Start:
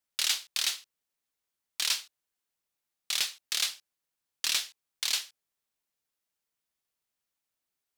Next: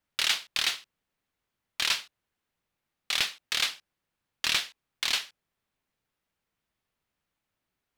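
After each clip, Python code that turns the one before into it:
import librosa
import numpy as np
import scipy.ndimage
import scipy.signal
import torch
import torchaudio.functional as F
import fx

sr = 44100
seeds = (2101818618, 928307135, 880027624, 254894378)

y = fx.bass_treble(x, sr, bass_db=7, treble_db=-12)
y = y * librosa.db_to_amplitude(7.5)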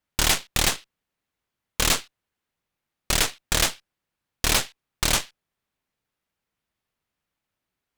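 y = fx.cheby_harmonics(x, sr, harmonics=(8,), levels_db=(-6,), full_scale_db=-10.5)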